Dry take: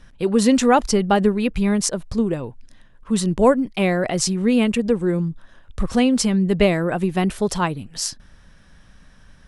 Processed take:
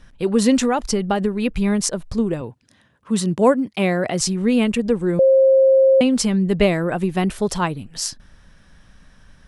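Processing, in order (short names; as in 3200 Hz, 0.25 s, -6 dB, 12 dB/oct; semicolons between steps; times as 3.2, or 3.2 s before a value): 0.64–1.42 compressor, threshold -16 dBFS, peak gain reduction 6 dB; 2.41–4.21 HPF 83 Hz 24 dB/oct; 5.19–6.01 bleep 533 Hz -9.5 dBFS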